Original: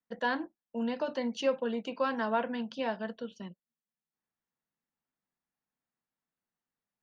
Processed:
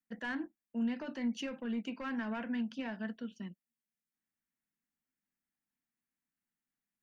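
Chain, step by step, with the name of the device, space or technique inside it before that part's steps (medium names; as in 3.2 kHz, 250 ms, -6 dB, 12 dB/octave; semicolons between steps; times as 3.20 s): soft clipper into limiter (saturation -23.5 dBFS, distortion -17 dB; peak limiter -28 dBFS, peak gain reduction 4 dB); graphic EQ 125/250/500/1000/2000/4000 Hz -5/+5/-10/-7/+4/-9 dB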